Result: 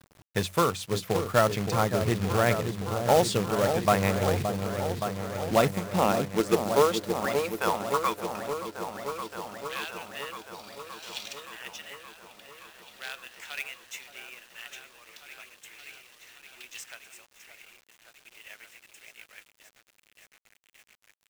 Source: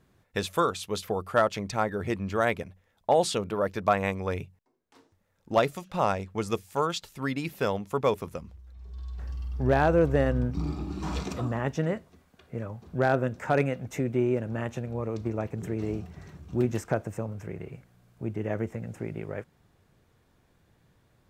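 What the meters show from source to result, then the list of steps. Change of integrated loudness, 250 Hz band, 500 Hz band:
+1.5 dB, -2.0 dB, 0.0 dB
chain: high-pass sweep 110 Hz -> 3000 Hz, 5.27–9.07; repeats that get brighter 0.571 s, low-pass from 750 Hz, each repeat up 1 oct, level -6 dB; companded quantiser 4-bit

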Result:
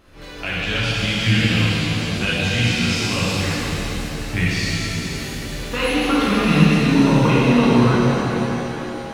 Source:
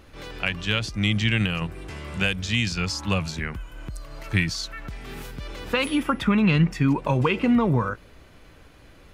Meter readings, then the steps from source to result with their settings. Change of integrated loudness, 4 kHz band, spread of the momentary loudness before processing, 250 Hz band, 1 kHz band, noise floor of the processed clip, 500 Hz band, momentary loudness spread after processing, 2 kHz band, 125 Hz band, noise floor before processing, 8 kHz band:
+5.0 dB, +7.0 dB, 17 LU, +6.5 dB, +6.5 dB, -31 dBFS, +7.5 dB, 12 LU, +6.0 dB, +6.0 dB, -50 dBFS, +8.5 dB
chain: shimmer reverb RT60 3.8 s, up +7 st, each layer -8 dB, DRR -9 dB; gain -4 dB

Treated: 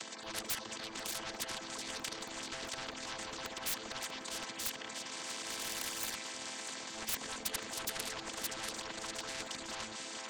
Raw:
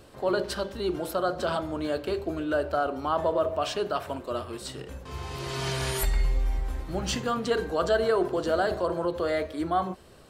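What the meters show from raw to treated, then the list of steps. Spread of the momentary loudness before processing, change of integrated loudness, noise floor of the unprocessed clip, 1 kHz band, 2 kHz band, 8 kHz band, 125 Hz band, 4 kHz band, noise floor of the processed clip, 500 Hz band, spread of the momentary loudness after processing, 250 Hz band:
8 LU, -10.5 dB, -46 dBFS, -14.5 dB, -6.5 dB, +2.0 dB, -22.5 dB, -2.0 dB, -47 dBFS, -21.5 dB, 4 LU, -17.0 dB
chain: chord vocoder minor triad, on A3; transient shaper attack -7 dB, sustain +9 dB; tone controls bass +9 dB, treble 0 dB; in parallel at -5.5 dB: soft clip -23.5 dBFS, distortion -13 dB; on the sum: reverb removal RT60 0.78 s; differentiator; on a send: split-band echo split 3000 Hz, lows 0.451 s, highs 0.642 s, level -15 dB; on the sum: sine folder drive 13 dB, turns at -25.5 dBFS; spectral compressor 4:1; gain +6.5 dB

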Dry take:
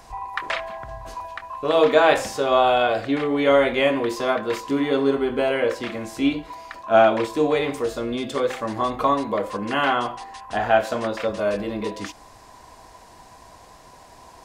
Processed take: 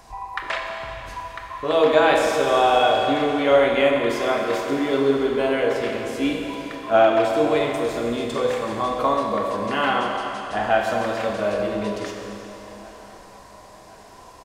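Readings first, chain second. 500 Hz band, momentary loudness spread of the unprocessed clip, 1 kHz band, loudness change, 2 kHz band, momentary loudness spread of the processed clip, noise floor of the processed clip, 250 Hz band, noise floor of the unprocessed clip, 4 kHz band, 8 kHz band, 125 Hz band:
+1.0 dB, 15 LU, +1.0 dB, +0.5 dB, +0.5 dB, 16 LU, -45 dBFS, 0.0 dB, -48 dBFS, +1.5 dB, +1.0 dB, +0.5 dB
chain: on a send: feedback echo 1.059 s, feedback 56%, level -23.5 dB; on the sum: Schroeder reverb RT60 3.2 s, combs from 30 ms, DRR 1.5 dB; gain -1.5 dB

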